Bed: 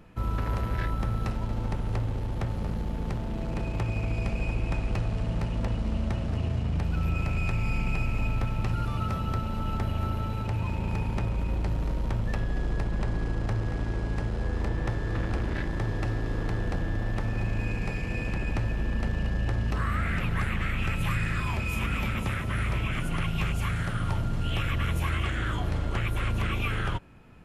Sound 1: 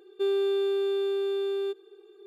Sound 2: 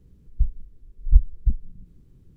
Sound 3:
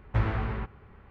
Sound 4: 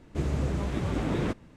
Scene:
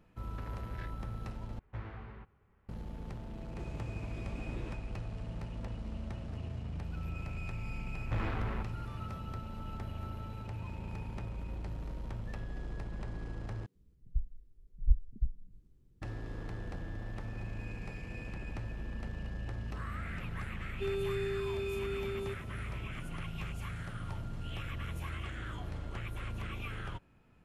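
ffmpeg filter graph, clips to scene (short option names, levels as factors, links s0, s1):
-filter_complex "[3:a]asplit=2[s0][s1];[0:a]volume=0.251[s2];[s1]asoftclip=type=tanh:threshold=0.0316[s3];[2:a]acrossover=split=170[s4][s5];[s4]adelay=90[s6];[s6][s5]amix=inputs=2:normalize=0[s7];[1:a]bass=f=250:g=15,treble=f=4000:g=7[s8];[s2]asplit=3[s9][s10][s11];[s9]atrim=end=1.594[s12];[s0]atrim=end=1.1,asetpts=PTS-STARTPTS,volume=0.15[s13];[s10]atrim=start=2.686:end=13.664[s14];[s7]atrim=end=2.36,asetpts=PTS-STARTPTS,volume=0.266[s15];[s11]atrim=start=16.016[s16];[4:a]atrim=end=1.56,asetpts=PTS-STARTPTS,volume=0.141,afade=t=in:d=0.004:c=hsin,afade=t=out:st=1.556:d=0.004:c=hsin,adelay=3420[s17];[s3]atrim=end=1.1,asetpts=PTS-STARTPTS,volume=0.891,afade=t=in:d=0.004:c=hsin,afade=t=out:st=1.096:d=0.004:c=hsin,adelay=7970[s18];[s8]atrim=end=2.26,asetpts=PTS-STARTPTS,volume=0.237,afade=t=in:d=0.004:c=hsin,afade=t=out:st=2.256:d=0.004:c=hsin,adelay=20610[s19];[s12][s13]acrossfade=d=0.004:c1=hsin:c2=hsin[s20];[s20][s14]acrossfade=d=0.004:c1=hsin:c2=hsin[s21];[s21][s15]acrossfade=d=0.004:c1=hsin:c2=hsin[s22];[s22][s16]acrossfade=d=0.004:c1=hsin:c2=hsin[s23];[s23][s17][s18][s19]amix=inputs=4:normalize=0"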